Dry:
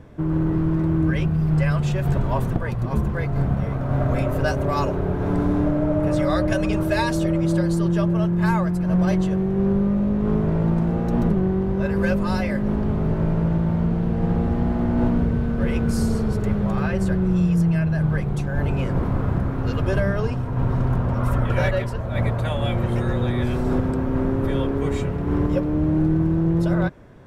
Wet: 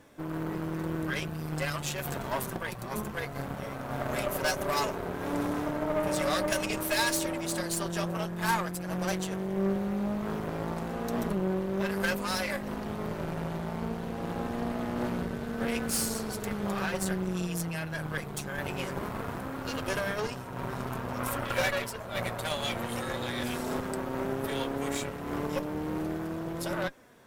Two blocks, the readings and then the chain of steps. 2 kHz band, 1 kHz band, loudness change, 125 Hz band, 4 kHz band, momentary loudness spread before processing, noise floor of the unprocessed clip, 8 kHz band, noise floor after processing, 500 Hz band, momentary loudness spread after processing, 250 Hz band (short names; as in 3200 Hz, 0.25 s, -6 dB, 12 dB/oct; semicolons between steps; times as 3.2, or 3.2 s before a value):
-2.0 dB, -4.0 dB, -10.5 dB, -16.5 dB, +2.5 dB, 4 LU, -25 dBFS, +7.5 dB, -39 dBFS, -7.5 dB, 7 LU, -12.5 dB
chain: flange 0.56 Hz, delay 3.4 ms, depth 2.1 ms, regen +64%; RIAA curve recording; added harmonics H 8 -18 dB, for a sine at -13.5 dBFS; gain -1 dB